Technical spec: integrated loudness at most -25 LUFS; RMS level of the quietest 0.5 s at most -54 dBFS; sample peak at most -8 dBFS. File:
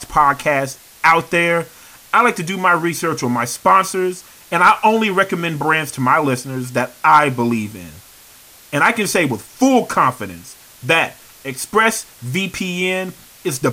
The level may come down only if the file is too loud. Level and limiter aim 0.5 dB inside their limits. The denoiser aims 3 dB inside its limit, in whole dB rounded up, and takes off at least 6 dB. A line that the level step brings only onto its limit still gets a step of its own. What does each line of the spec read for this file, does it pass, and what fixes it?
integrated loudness -16.5 LUFS: fail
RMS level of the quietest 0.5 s -44 dBFS: fail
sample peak -1.5 dBFS: fail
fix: denoiser 6 dB, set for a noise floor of -44 dBFS; gain -9 dB

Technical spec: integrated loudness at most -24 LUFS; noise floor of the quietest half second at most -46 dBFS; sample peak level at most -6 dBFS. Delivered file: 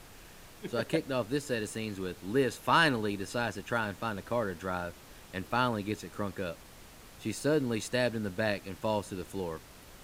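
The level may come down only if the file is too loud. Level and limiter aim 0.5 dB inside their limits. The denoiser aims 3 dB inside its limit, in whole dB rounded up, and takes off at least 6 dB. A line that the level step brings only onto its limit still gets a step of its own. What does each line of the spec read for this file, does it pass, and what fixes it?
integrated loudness -32.5 LUFS: OK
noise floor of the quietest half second -52 dBFS: OK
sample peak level -13.0 dBFS: OK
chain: none

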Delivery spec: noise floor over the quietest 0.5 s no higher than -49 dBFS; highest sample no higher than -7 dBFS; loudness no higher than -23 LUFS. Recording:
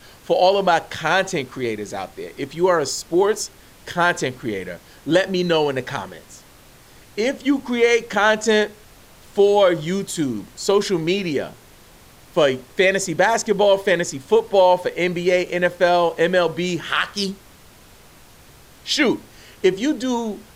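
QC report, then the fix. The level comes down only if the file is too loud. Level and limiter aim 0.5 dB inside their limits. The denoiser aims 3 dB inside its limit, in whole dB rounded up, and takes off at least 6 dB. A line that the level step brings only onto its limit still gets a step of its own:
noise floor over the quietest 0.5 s -47 dBFS: fail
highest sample -5.5 dBFS: fail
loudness -20.0 LUFS: fail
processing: gain -3.5 dB

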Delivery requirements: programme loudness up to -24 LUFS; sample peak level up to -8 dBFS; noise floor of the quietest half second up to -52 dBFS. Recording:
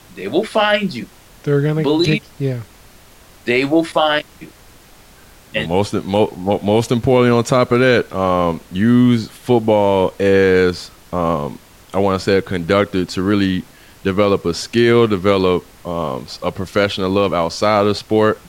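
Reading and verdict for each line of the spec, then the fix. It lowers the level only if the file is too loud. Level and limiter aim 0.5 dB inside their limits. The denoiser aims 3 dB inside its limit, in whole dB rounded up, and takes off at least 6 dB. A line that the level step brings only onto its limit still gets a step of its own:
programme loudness -16.5 LUFS: fail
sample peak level -3.0 dBFS: fail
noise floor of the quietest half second -44 dBFS: fail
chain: denoiser 6 dB, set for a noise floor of -44 dBFS; gain -8 dB

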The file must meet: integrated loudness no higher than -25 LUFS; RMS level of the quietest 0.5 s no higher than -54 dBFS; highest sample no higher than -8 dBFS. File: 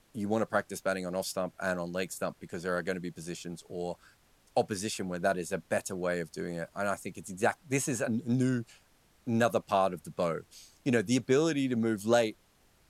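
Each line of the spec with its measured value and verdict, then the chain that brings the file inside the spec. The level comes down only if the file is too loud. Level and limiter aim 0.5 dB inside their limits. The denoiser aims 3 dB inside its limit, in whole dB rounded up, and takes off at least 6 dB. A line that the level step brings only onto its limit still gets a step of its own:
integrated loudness -32.0 LUFS: OK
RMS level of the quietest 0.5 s -65 dBFS: OK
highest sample -12.0 dBFS: OK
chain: none

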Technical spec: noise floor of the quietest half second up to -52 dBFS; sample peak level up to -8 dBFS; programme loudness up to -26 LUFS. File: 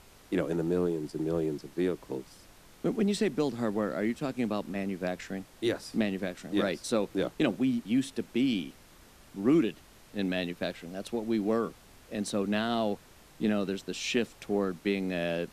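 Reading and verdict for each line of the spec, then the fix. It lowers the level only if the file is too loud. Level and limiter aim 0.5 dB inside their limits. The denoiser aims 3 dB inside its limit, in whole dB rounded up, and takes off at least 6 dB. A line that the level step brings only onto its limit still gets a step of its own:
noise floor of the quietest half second -55 dBFS: OK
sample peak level -13.0 dBFS: OK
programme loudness -31.5 LUFS: OK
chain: none

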